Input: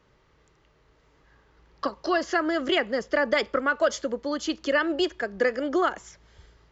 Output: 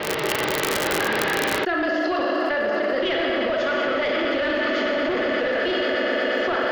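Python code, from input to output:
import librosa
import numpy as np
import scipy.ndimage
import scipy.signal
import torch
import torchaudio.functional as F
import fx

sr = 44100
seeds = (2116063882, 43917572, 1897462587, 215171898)

y = fx.block_reorder(x, sr, ms=166.0, group=5)
y = scipy.signal.sosfilt(scipy.signal.butter(2, 290.0, 'highpass', fs=sr, output='sos'), y)
y = fx.peak_eq(y, sr, hz=1100.0, db=-5.5, octaves=0.74)
y = fx.echo_swell(y, sr, ms=120, loudest=8, wet_db=-13.5)
y = fx.rev_schroeder(y, sr, rt60_s=1.6, comb_ms=29, drr_db=-0.5)
y = np.clip(10.0 ** (20.5 / 20.0) * y, -1.0, 1.0) / 10.0 ** (20.5 / 20.0)
y = scipy.signal.sosfilt(scipy.signal.butter(4, 3900.0, 'lowpass', fs=sr, output='sos'), y)
y = fx.dmg_crackle(y, sr, seeds[0], per_s=78.0, level_db=-47.0)
y = fx.env_flatten(y, sr, amount_pct=100)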